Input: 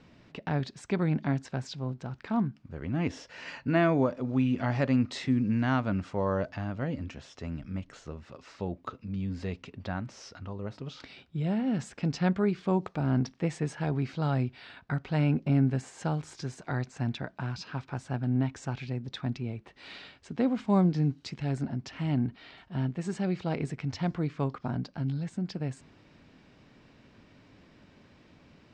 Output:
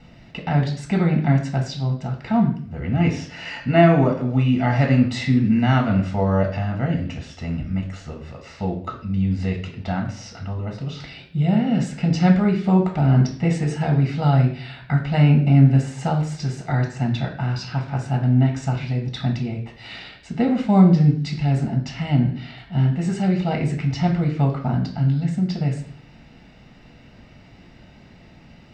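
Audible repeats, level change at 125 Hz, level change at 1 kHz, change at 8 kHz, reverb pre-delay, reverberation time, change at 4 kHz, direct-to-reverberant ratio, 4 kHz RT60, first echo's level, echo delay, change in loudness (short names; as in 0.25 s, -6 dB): none, +12.5 dB, +10.0 dB, n/a, 3 ms, 0.50 s, +9.5 dB, 1.5 dB, 0.55 s, none, none, +10.5 dB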